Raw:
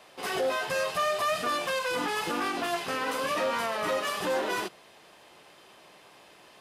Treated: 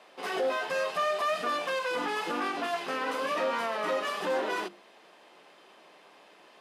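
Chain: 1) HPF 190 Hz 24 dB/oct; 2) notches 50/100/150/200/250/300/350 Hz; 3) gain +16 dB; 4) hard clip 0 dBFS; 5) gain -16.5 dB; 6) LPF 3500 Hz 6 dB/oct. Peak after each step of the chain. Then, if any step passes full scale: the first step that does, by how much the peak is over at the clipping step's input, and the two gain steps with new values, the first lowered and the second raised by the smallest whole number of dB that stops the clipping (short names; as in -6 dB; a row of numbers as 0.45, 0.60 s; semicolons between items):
-18.0, -18.0, -2.0, -2.0, -18.5, -19.5 dBFS; no overload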